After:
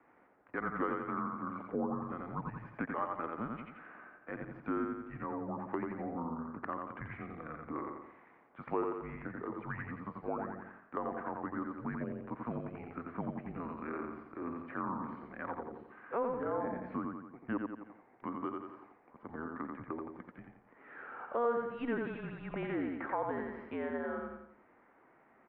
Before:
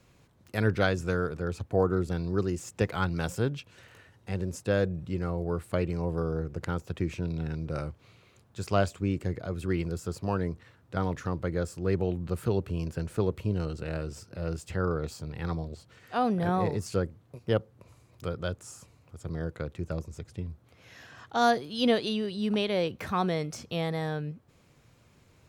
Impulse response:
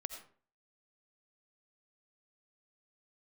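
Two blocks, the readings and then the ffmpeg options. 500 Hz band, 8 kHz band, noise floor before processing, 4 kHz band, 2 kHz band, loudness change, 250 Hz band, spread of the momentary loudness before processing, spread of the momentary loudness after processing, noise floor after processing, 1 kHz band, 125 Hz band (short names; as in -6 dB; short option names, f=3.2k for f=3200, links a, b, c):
-9.0 dB, under -35 dB, -62 dBFS, under -25 dB, -7.0 dB, -9.0 dB, -7.0 dB, 13 LU, 13 LU, -65 dBFS, -5.0 dB, -17.0 dB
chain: -af "aecho=1:1:87|174|261|348|435:0.631|0.259|0.106|0.0435|0.0178,highpass=f=550:t=q:w=0.5412,highpass=f=550:t=q:w=1.307,lowpass=f=2.1k:t=q:w=0.5176,lowpass=f=2.1k:t=q:w=0.7071,lowpass=f=2.1k:t=q:w=1.932,afreqshift=-240,acompressor=threshold=-42dB:ratio=2,volume=3.5dB"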